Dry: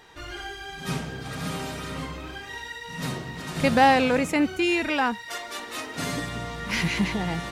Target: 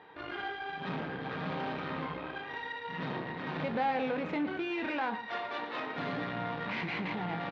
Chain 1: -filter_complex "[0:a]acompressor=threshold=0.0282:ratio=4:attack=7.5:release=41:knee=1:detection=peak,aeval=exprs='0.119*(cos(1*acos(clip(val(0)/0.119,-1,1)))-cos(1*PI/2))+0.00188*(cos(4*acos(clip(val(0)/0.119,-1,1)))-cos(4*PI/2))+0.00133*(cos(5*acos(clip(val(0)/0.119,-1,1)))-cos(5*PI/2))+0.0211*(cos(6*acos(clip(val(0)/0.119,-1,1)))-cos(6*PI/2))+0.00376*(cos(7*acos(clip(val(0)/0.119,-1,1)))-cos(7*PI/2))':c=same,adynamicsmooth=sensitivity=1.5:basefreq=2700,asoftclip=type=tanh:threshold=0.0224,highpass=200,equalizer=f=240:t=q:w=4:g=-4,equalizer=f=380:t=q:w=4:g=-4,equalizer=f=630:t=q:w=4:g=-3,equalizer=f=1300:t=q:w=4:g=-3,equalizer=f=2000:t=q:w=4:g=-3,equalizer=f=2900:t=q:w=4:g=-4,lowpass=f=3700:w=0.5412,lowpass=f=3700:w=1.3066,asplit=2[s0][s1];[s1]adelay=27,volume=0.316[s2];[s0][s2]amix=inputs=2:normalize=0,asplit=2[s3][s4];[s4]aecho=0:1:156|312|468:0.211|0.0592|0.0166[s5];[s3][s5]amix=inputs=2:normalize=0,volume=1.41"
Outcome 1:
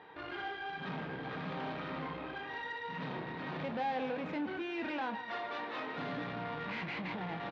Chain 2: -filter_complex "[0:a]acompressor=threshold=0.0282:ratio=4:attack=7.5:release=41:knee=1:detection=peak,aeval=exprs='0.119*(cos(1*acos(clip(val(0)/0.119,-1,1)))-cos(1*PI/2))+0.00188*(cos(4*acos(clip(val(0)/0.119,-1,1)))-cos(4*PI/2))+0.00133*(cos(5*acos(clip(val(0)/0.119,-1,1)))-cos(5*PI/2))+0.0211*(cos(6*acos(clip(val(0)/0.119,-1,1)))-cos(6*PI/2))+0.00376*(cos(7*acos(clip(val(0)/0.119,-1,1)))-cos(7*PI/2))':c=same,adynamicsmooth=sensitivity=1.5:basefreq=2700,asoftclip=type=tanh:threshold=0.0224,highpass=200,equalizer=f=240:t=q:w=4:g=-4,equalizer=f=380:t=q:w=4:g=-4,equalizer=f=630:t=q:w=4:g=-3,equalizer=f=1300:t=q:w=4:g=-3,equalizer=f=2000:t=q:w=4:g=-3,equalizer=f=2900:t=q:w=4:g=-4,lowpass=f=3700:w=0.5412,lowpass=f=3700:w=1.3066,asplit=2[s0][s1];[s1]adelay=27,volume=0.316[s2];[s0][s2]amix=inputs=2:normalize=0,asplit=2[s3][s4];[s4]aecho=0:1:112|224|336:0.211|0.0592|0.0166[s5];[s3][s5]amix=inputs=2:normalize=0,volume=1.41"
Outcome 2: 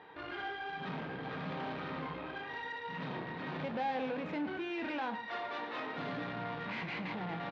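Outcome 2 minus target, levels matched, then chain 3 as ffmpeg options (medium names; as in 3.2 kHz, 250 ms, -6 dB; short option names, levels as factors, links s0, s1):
saturation: distortion +7 dB
-filter_complex "[0:a]acompressor=threshold=0.0282:ratio=4:attack=7.5:release=41:knee=1:detection=peak,aeval=exprs='0.119*(cos(1*acos(clip(val(0)/0.119,-1,1)))-cos(1*PI/2))+0.00188*(cos(4*acos(clip(val(0)/0.119,-1,1)))-cos(4*PI/2))+0.00133*(cos(5*acos(clip(val(0)/0.119,-1,1)))-cos(5*PI/2))+0.0211*(cos(6*acos(clip(val(0)/0.119,-1,1)))-cos(6*PI/2))+0.00376*(cos(7*acos(clip(val(0)/0.119,-1,1)))-cos(7*PI/2))':c=same,adynamicsmooth=sensitivity=1.5:basefreq=2700,asoftclip=type=tanh:threshold=0.0531,highpass=200,equalizer=f=240:t=q:w=4:g=-4,equalizer=f=380:t=q:w=4:g=-4,equalizer=f=630:t=q:w=4:g=-3,equalizer=f=1300:t=q:w=4:g=-3,equalizer=f=2000:t=q:w=4:g=-3,equalizer=f=2900:t=q:w=4:g=-4,lowpass=f=3700:w=0.5412,lowpass=f=3700:w=1.3066,asplit=2[s0][s1];[s1]adelay=27,volume=0.316[s2];[s0][s2]amix=inputs=2:normalize=0,asplit=2[s3][s4];[s4]aecho=0:1:112|224|336:0.211|0.0592|0.0166[s5];[s3][s5]amix=inputs=2:normalize=0,volume=1.41"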